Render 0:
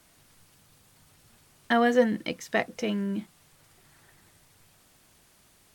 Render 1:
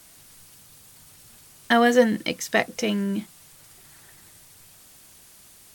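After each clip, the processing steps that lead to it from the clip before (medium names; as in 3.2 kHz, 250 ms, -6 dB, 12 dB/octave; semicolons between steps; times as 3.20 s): treble shelf 4.1 kHz +9.5 dB; trim +4 dB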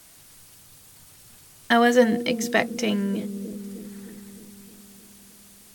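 bucket-brigade echo 308 ms, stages 1024, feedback 65%, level -8 dB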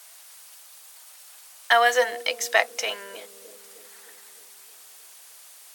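high-pass 610 Hz 24 dB/octave; trim +3 dB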